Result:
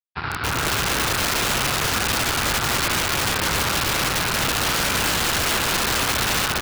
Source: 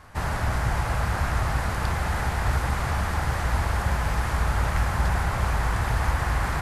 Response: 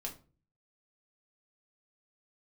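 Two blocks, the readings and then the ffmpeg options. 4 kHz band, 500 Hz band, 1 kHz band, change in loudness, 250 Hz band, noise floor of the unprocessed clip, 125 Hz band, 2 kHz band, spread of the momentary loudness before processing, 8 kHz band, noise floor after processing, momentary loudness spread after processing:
+17.5 dB, +5.5 dB, +3.5 dB, +6.0 dB, +5.0 dB, -28 dBFS, -5.0 dB, +8.0 dB, 2 LU, +16.5 dB, -28 dBFS, 1 LU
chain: -filter_complex "[0:a]aresample=11025,acrusher=bits=3:mix=0:aa=0.5,aresample=44100,highpass=130,equalizer=f=220:t=q:w=4:g=-4,equalizer=f=380:t=q:w=4:g=6,equalizer=f=600:t=q:w=4:g=-10,equalizer=f=1400:t=q:w=4:g=6,equalizer=f=1900:t=q:w=4:g=-6,equalizer=f=3200:t=q:w=4:g=-7,lowpass=f=4300:w=0.5412,lowpass=f=4300:w=1.3066,dynaudnorm=f=350:g=3:m=1.5,equalizer=f=470:w=0.46:g=-9,asplit=2[s0][s1];[s1]aecho=0:1:84.55|285.7:0.355|0.891[s2];[s0][s2]amix=inputs=2:normalize=0,aeval=exprs='(mod(11.2*val(0)+1,2)-1)/11.2':c=same,volume=1.78"

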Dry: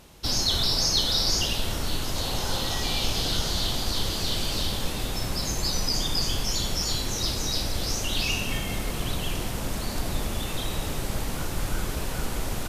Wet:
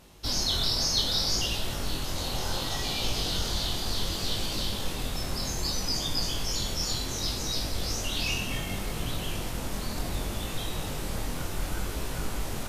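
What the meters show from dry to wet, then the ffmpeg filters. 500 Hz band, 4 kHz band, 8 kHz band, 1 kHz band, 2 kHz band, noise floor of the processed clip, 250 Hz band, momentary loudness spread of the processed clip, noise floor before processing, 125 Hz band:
-3.0 dB, -3.0 dB, -3.0 dB, -3.0 dB, -3.0 dB, -34 dBFS, -3.0 dB, 9 LU, -31 dBFS, -3.0 dB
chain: -af "flanger=delay=18.5:depth=6.1:speed=0.66"

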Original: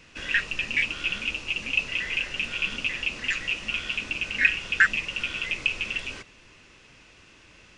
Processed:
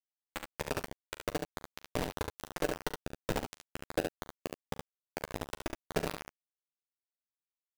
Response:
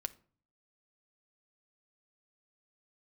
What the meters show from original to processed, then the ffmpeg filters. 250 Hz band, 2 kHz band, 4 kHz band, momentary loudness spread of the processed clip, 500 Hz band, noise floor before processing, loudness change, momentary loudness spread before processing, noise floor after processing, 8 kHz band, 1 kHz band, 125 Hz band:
+2.0 dB, -21.0 dB, -16.5 dB, 9 LU, +8.0 dB, -54 dBFS, -14.0 dB, 8 LU, under -85 dBFS, -4.0 dB, 0.0 dB, +1.0 dB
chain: -filter_complex "[0:a]lowpass=5800,acrossover=split=240|3000[s0][s1][s2];[s1]acompressor=threshold=0.0316:ratio=6[s3];[s0][s3][s2]amix=inputs=3:normalize=0,alimiter=limit=0.106:level=0:latency=1:release=384,areverse,acompressor=threshold=0.00398:ratio=4,areverse,acrusher=samples=42:mix=1:aa=0.000001,aphaser=in_gain=1:out_gain=1:delay=3.1:decay=0.55:speed=1.5:type=sinusoidal,acrusher=bits=5:mix=0:aa=0.000001,asplit=2[s4][s5];[s5]adelay=12,volume=0.251[s6];[s4][s6]amix=inputs=2:normalize=0,aecho=1:1:40|70:0.158|0.562,volume=2.51"

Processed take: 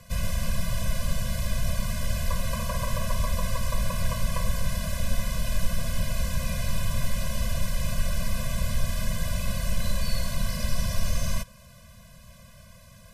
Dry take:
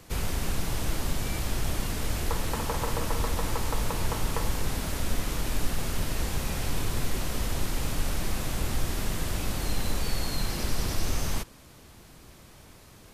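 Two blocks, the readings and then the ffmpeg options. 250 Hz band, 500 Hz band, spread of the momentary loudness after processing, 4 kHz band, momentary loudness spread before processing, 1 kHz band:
-0.5 dB, -1.0 dB, 1 LU, -0.5 dB, 16 LU, -2.0 dB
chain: -af "afftfilt=real='re*eq(mod(floor(b*sr/1024/240),2),0)':imag='im*eq(mod(floor(b*sr/1024/240),2),0)':win_size=1024:overlap=0.75,volume=1.41"

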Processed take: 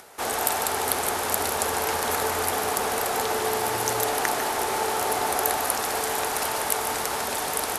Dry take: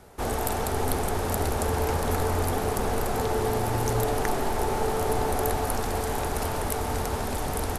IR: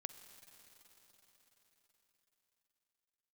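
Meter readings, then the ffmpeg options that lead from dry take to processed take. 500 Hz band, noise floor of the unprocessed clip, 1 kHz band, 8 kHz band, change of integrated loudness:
-0.5 dB, -30 dBFS, +3.5 dB, +8.0 dB, +2.5 dB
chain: -filter_complex "[0:a]highpass=f=1200:p=1,acompressor=mode=upward:threshold=0.00224:ratio=2.5,asplit=2[s0][s1];[1:a]atrim=start_sample=2205,adelay=149[s2];[s1][s2]afir=irnorm=-1:irlink=0,volume=0.562[s3];[s0][s3]amix=inputs=2:normalize=0,volume=2.37"

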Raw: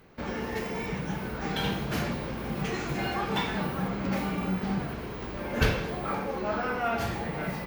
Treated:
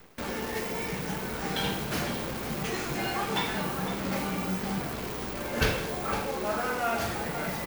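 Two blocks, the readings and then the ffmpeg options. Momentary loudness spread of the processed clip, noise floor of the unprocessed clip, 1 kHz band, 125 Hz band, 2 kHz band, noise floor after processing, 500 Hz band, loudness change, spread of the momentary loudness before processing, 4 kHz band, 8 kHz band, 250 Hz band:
5 LU, -37 dBFS, +0.5 dB, -3.0 dB, +1.0 dB, -35 dBFS, 0.0 dB, 0.0 dB, 6 LU, +2.5 dB, +8.5 dB, -2.0 dB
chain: -af "bass=f=250:g=-4,treble=f=4000:g=4,areverse,acompressor=mode=upward:threshold=0.0282:ratio=2.5,areverse,acrusher=bits=7:dc=4:mix=0:aa=0.000001,aecho=1:1:508:0.251"

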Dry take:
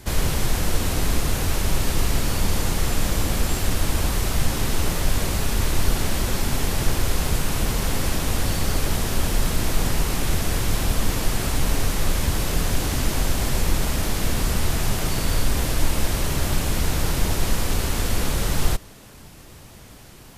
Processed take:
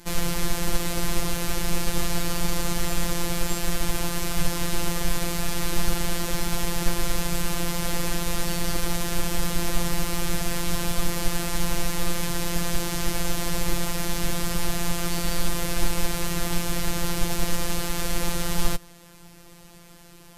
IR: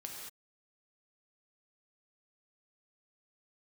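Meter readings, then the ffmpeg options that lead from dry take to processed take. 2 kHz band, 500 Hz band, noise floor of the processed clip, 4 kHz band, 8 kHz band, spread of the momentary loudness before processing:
-2.0 dB, -2.5 dB, -48 dBFS, -2.0 dB, -1.5 dB, 1 LU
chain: -af "afftfilt=real='hypot(re,im)*cos(PI*b)':imag='0':win_size=1024:overlap=0.75,aeval=exprs='0.562*(cos(1*acos(clip(val(0)/0.562,-1,1)))-cos(1*PI/2))+0.0794*(cos(2*acos(clip(val(0)/0.562,-1,1)))-cos(2*PI/2))+0.00708*(cos(3*acos(clip(val(0)/0.562,-1,1)))-cos(3*PI/2))+0.00447*(cos(6*acos(clip(val(0)/0.562,-1,1)))-cos(6*PI/2))':c=same"

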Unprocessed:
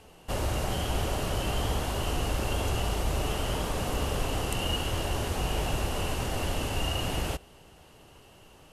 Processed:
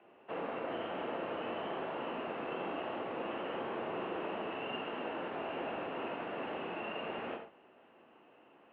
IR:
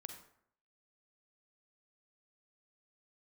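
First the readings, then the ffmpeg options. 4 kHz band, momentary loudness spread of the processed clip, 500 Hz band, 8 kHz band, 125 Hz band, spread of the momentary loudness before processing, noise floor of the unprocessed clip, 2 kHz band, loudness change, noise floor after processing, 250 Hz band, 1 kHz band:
-14.5 dB, 1 LU, -4.0 dB, under -40 dB, -24.5 dB, 2 LU, -55 dBFS, -6.5 dB, -9.0 dB, -63 dBFS, -6.5 dB, -5.0 dB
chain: -filter_complex "[0:a]acrossover=split=310 2600:gain=0.126 1 0.112[s0][s1][s2];[s0][s1][s2]amix=inputs=3:normalize=0[s3];[1:a]atrim=start_sample=2205,atrim=end_sample=6174[s4];[s3][s4]afir=irnorm=-1:irlink=0,highpass=f=220:t=q:w=0.5412,highpass=f=220:t=q:w=1.307,lowpass=f=3400:t=q:w=0.5176,lowpass=f=3400:t=q:w=0.7071,lowpass=f=3400:t=q:w=1.932,afreqshift=-83,volume=1.19"

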